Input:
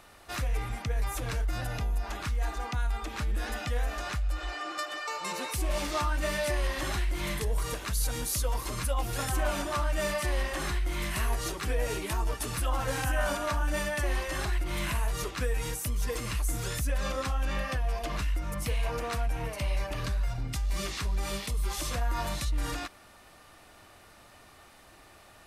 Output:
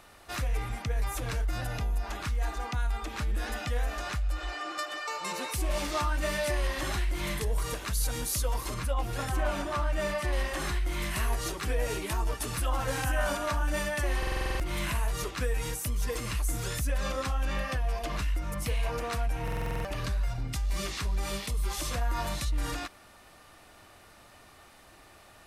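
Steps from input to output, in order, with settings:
0:08.74–0:10.33: high-shelf EQ 4,500 Hz −8.5 dB
buffer that repeats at 0:14.18/0:19.43, samples 2,048, times 8

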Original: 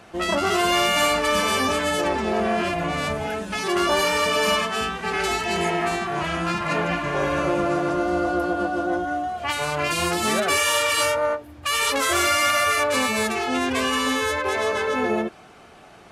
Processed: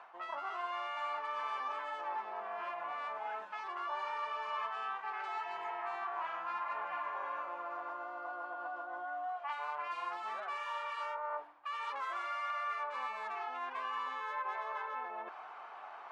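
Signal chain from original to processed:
reversed playback
downward compressor 12 to 1, threshold −35 dBFS, peak gain reduction 18.5 dB
reversed playback
four-pole ladder band-pass 1,100 Hz, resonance 55%
level +10 dB

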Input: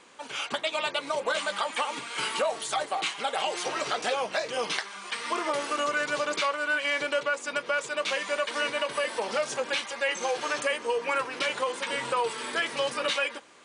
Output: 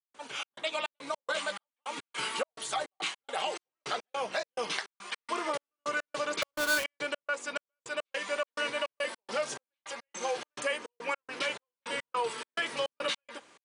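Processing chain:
0:06.42–0:06.84: each half-wave held at its own peak
gate pattern ".xx.xx.x.xx..x" 105 BPM −60 dB
level −3.5 dB

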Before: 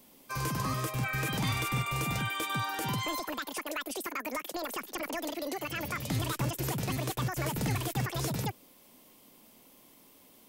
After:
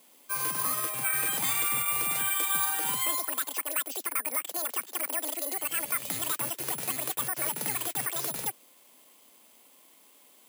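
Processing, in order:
meter weighting curve A
bad sample-rate conversion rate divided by 4×, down filtered, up zero stuff

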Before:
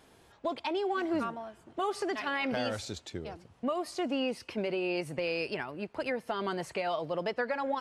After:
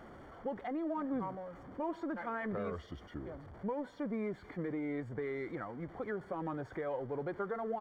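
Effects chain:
converter with a step at zero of −39.5 dBFS
pitch shifter −3.5 semitones
Savitzky-Golay smoothing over 41 samples
level −6.5 dB

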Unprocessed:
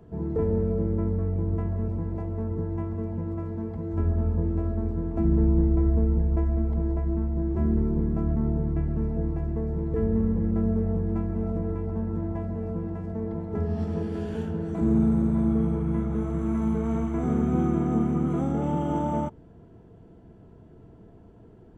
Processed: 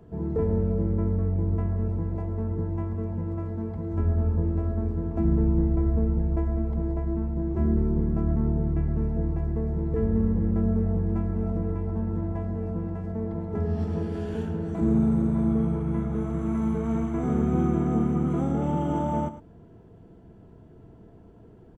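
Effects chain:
single-tap delay 107 ms −13 dB

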